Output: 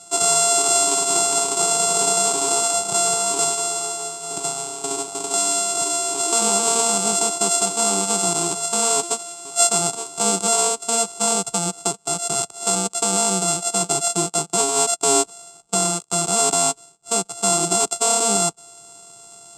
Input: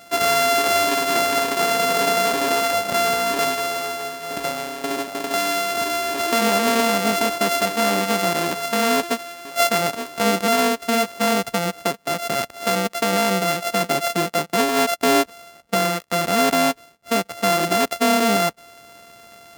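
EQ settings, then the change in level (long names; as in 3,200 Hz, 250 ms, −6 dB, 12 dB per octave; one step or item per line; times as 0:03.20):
low-pass with resonance 7,900 Hz, resonance Q 11
phaser with its sweep stopped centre 370 Hz, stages 8
0.0 dB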